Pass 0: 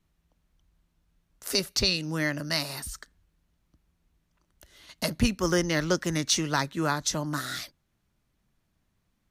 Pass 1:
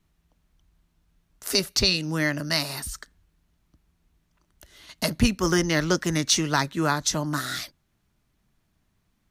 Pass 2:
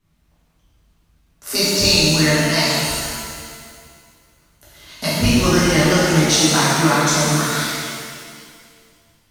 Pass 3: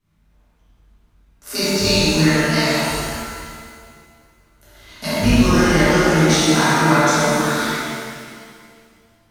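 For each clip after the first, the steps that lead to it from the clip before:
notch 530 Hz, Q 12; gain +3.5 dB
shimmer reverb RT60 2 s, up +7 st, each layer -8 dB, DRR -10.5 dB; gain -2.5 dB
reverb RT60 0.80 s, pre-delay 23 ms, DRR -4.5 dB; gain -5 dB

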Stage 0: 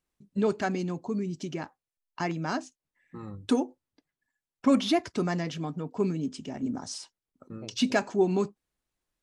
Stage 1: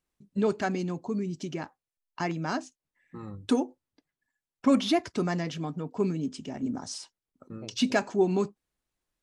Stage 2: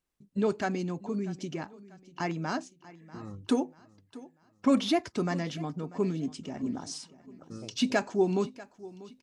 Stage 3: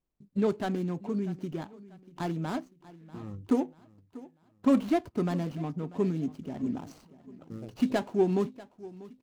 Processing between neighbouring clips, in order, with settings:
nothing audible
feedback echo 0.641 s, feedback 40%, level -19 dB; gain -1.5 dB
median filter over 25 samples; low shelf 190 Hz +3.5 dB

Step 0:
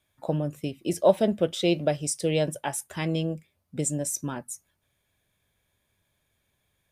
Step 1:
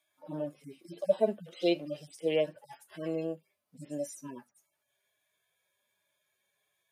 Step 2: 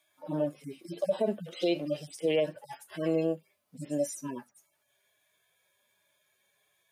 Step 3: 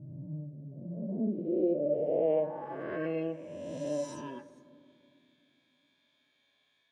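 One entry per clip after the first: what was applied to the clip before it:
median-filter separation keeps harmonic; HPF 390 Hz 12 dB/oct
limiter -24.5 dBFS, peak gain reduction 10.5 dB; gain +6 dB
spectral swells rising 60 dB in 2.10 s; on a send at -13 dB: reverb RT60 2.5 s, pre-delay 6 ms; on the sum: low-pass sweep 140 Hz -> 3900 Hz, 0.64–3.82; gain -6.5 dB

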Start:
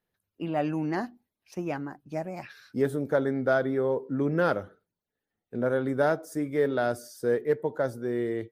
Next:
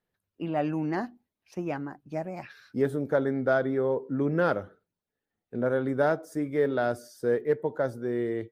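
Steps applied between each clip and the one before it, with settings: high shelf 4900 Hz -6.5 dB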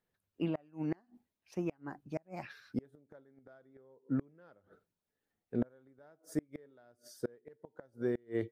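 flipped gate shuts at -21 dBFS, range -33 dB; noise-modulated level, depth 55%; gain +1 dB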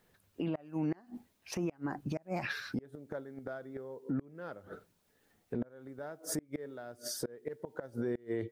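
compressor 16:1, threshold -42 dBFS, peak gain reduction 16 dB; limiter -42 dBFS, peak gain reduction 11 dB; gain +16 dB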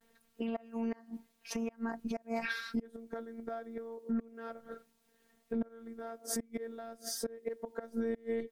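vibrato 0.3 Hz 38 cents; robotiser 228 Hz; gain +3 dB

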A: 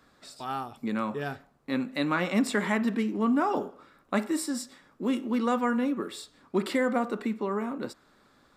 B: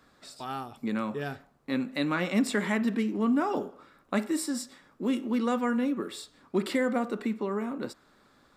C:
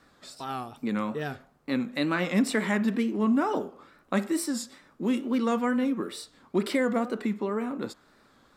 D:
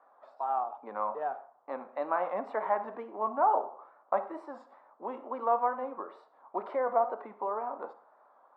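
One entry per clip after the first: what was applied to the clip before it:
dynamic EQ 990 Hz, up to -4 dB, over -38 dBFS, Q 1.1
wow and flutter 93 cents; gain +1.5 dB
Butterworth band-pass 810 Hz, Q 1.8; reverb RT60 0.40 s, pre-delay 42 ms, DRR 15 dB; gain +7 dB

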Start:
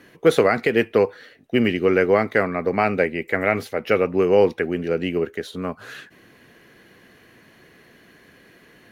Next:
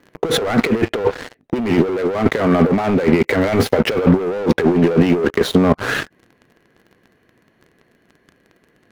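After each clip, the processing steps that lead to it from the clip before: sample leveller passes 5; negative-ratio compressor -13 dBFS, ratio -0.5; high shelf 2100 Hz -11 dB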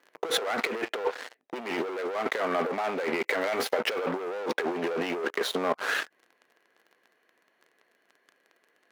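HPF 570 Hz 12 dB/oct; gain -7 dB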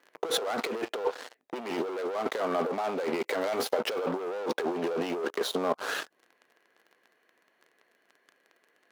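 dynamic EQ 2000 Hz, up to -8 dB, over -46 dBFS, Q 1.4

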